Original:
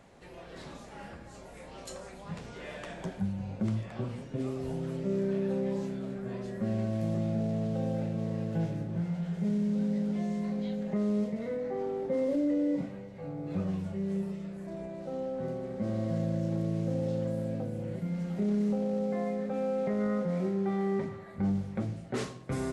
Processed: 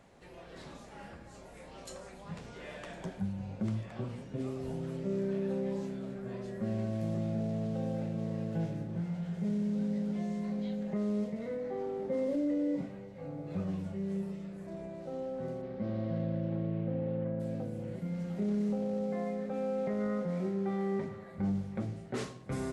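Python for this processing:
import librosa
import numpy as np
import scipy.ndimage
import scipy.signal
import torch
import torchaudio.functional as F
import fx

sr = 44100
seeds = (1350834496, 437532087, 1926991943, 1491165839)

y = fx.lowpass(x, sr, hz=fx.line((15.61, 5100.0), (17.39, 2300.0)), slope=24, at=(15.61, 17.39), fade=0.02)
y = y + 10.0 ** (-20.5 / 20.0) * np.pad(y, (int(1061 * sr / 1000.0), 0))[:len(y)]
y = y * 10.0 ** (-3.0 / 20.0)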